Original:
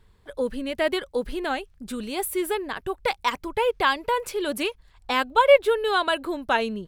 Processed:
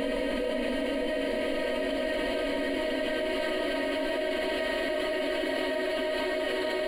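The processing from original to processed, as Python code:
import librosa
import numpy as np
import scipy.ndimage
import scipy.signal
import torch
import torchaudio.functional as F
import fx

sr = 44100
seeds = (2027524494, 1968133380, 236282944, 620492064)

y = fx.paulstretch(x, sr, seeds[0], factor=21.0, window_s=1.0, from_s=0.57)
y = fx.echo_split(y, sr, split_hz=340.0, low_ms=190, high_ms=447, feedback_pct=52, wet_db=-9.0)
y = fx.level_steps(y, sr, step_db=17)
y = F.gain(torch.from_numpy(y), 4.5).numpy()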